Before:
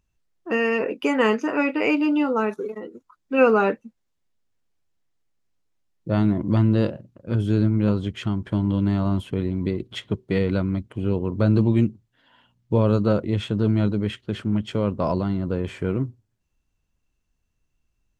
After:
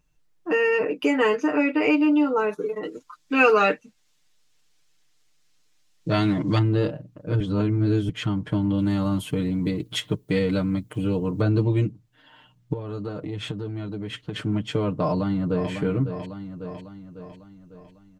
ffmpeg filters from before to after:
-filter_complex "[0:a]asettb=1/sr,asplit=3[a][b][c];[a]atrim=end=2.834[d];[b]atrim=start=2.83:end=6.59,asetpts=PTS-STARTPTS,afade=t=in:d=0.004:c=qsin,afade=t=out:st=3.756:d=0.004:c=qsin,equalizer=f=5k:w=0.3:g=14[e];[c]atrim=start=6.586[f];[d][e]acrossfade=d=0.004:c1=hsin:c2=qsin[g];[g][f]acrossfade=d=0.004:c1=qsin:c2=hsin,asettb=1/sr,asplit=3[h][i][j];[h]atrim=end=8.784[k];[i]atrim=start=8.78:end=11.41,asetpts=PTS-STARTPTS,afade=t=in:d=0.004:c=qsin,afade=t=out:st=2.626:d=0.004:c=qsin,aemphasis=mode=production:type=50fm[l];[j]atrim=start=11.406[m];[k][l]acrossfade=d=0.004:c1=hsin:c2=qsin[n];[n][m]acrossfade=d=0.004:c1=qsin:c2=hsin,asettb=1/sr,asplit=3[o][p][q];[o]atrim=end=12.734[r];[p]atrim=start=12.73:end=14.36,asetpts=PTS-STARTPTS,afade=t=in:d=0.004:c=qsin,afade=t=out:st=1.626:d=0.004:c=qsin,acompressor=threshold=-31dB:ratio=5:attack=3.2:release=140:knee=1:detection=peak[s];[q]atrim=start=14.356[t];[r][s]acrossfade=d=0.004:c1=hsin:c2=qsin[u];[u][t]acrossfade=d=0.004:c1=qsin:c2=hsin,asplit=2[v][w];[w]afade=t=in:st=14.97:d=0.01,afade=t=out:st=15.7:d=0.01,aecho=0:1:550|1100|1650|2200|2750|3300:0.334965|0.167483|0.0837414|0.0418707|0.0209353|0.0104677[x];[v][x]amix=inputs=2:normalize=0,asplit=3[y][z][aa];[y]atrim=end=7.402[ab];[z]atrim=start=7.398:end=8.092,asetpts=PTS-STARTPTS,areverse[ac];[aa]atrim=start=8.088[ad];[ab][ac]acrossfade=d=0.004:c1=hsin:c2=hsin[ae];[ae][ad]acrossfade=d=0.004:c1=hsin:c2=hsin,aecho=1:1:6.6:0.92,acompressor=threshold=-31dB:ratio=1.5,volume=2.5dB"

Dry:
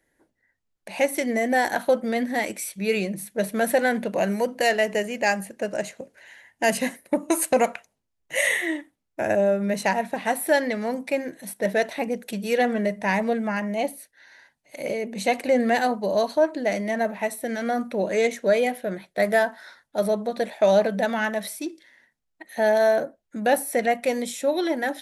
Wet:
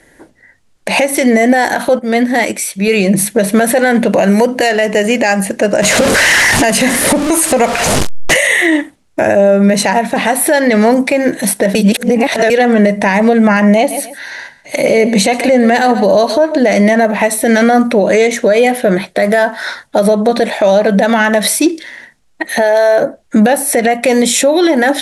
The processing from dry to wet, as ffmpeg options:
-filter_complex "[0:a]asettb=1/sr,asplit=3[a][b][c];[a]atrim=end=5.824[d];[b]atrim=start=5.82:end=8.39,asetpts=PTS-STARTPTS,afade=t=in:d=0.004:c=qsin,afade=t=out:st=2.566:d=0.004:c=qsin,aeval=exprs='val(0)+0.5*0.0376*sgn(val(0))':c=same[e];[c]atrim=start=8.386[f];[d][e]acrossfade=d=0.004:c1=hsin:c2=qsin[g];[g][f]acrossfade=d=0.004:c1=qsin:c2=hsin,asettb=1/sr,asplit=3[h][i][j];[h]atrim=end=13.774[k];[i]atrim=start=13.77:end=16.58,asetpts=PTS-STARTPTS,afade=t=in:d=0.004:c=qsin,afade=t=out:st=2.806:d=0.004:c=qsin,aecho=1:1:135|270:0.126|0.029,atrim=end_sample=123921[l];[j]atrim=start=16.576[m];[k][l]acrossfade=d=0.004:c1=hsin:c2=qsin[n];[n][m]acrossfade=d=0.004:c1=qsin:c2=hsin,asettb=1/sr,asplit=3[o][p][q];[o]atrim=end=22.614[r];[p]atrim=start=22.61:end=23.02,asetpts=PTS-STARTPTS,afade=t=in:d=0.004:c=qsin,afade=t=out:st=0.406:d=0.004:c=qsin,equalizer=f=220:t=o:w=0.37:g=-12[s];[q]atrim=start=23.016[t];[r][s]acrossfade=d=0.004:c1=hsin:c2=qsin[u];[u][t]acrossfade=d=0.004:c1=qsin:c2=hsin,asplit=5[v][w][x][y][z];[v]atrim=end=1.992[aa];[w]atrim=start=1.988:end=2.882,asetpts=PTS-STARTPTS,volume=-10dB[ab];[x]atrim=start=2.878:end=11.752[ac];[y]atrim=start=11.748:end=12.502,asetpts=PTS-STARTPTS,areverse[ad];[z]atrim=start=12.498[ae];[aa][ab]acrossfade=d=0.004:c1=hsin:c2=hsin[af];[af][ac]acrossfade=d=0.004:c1=hsin:c2=hsin[ag];[ag][ad]acrossfade=d=0.004:c1=hsin:c2=hsin[ah];[ah][ae]acrossfade=d=0.004:c1=hsin:c2=hsin,acompressor=threshold=-28dB:ratio=6,lowpass=f=11k:w=0.5412,lowpass=f=11k:w=1.3066,alimiter=level_in=25.5dB:limit=-1dB:release=50:level=0:latency=1,volume=-1dB"

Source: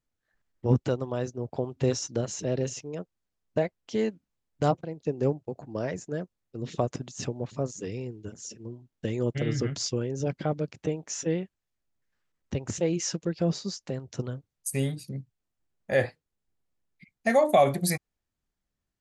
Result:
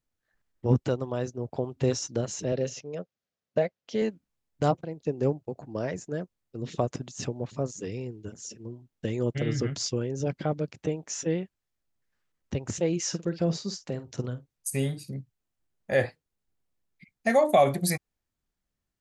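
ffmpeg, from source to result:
-filter_complex "[0:a]asettb=1/sr,asplit=3[a][b][c];[a]atrim=end=2.524[d];[b]atrim=start=2.52:end=4.02,asetpts=PTS-STARTPTS,afade=t=in:d=0.004:c=qsin,afade=t=out:st=1.496:d=0.004:c=qsin,highpass=130,equalizer=f=320:t=q:w=4:g=-6,equalizer=f=550:t=q:w=4:g=5,equalizer=f=960:t=q:w=4:g=-5,lowpass=f=6.5k:w=0.5412,lowpass=f=6.5k:w=1.3066[e];[c]atrim=start=4.016[f];[d][e]acrossfade=d=0.004:c1=hsin:c2=qsin[g];[g][f]acrossfade=d=0.004:c1=qsin:c2=hsin,asettb=1/sr,asplit=3[h][i][j];[h]atrim=end=13.054[k];[i]atrim=start=13.05:end=15.19,asetpts=PTS-STARTPTS,afade=t=in:d=0.004:c=qsin,afade=t=out:st=2.136:d=0.004:c=qsin,asplit=2[l][m];[m]adelay=49,volume=-13.5dB[n];[l][n]amix=inputs=2:normalize=0,atrim=end_sample=94374[o];[j]atrim=start=15.186[p];[k][o]acrossfade=d=0.004:c1=hsin:c2=qsin[q];[q][p]acrossfade=d=0.004:c1=qsin:c2=hsin"

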